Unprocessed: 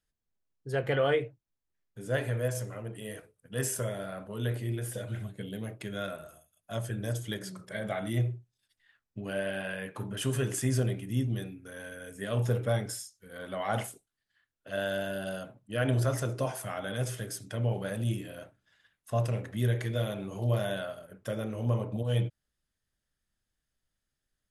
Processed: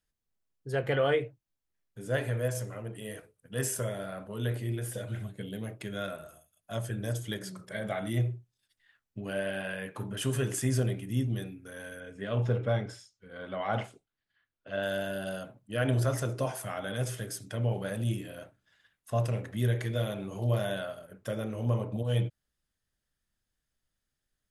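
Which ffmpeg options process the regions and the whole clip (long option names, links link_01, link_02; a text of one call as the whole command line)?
ffmpeg -i in.wav -filter_complex "[0:a]asettb=1/sr,asplit=3[link_01][link_02][link_03];[link_01]atrim=end=12.004[link_04];[link_02]atrim=start=12:end=14.83,asetpts=PTS-STARTPTS,afade=type=in:duration=0.004:curve=qsin,afade=type=out:start_time=2.826:duration=0.004:curve=qsin,lowpass=3700,bandreject=frequency=1800:width=21[link_05];[link_03]atrim=start=14.826[link_06];[link_04][link_05]acrossfade=duration=0.004:curve1=hsin:curve2=qsin[link_07];[link_07][link_06]acrossfade=duration=0.004:curve1=qsin:curve2=hsin" out.wav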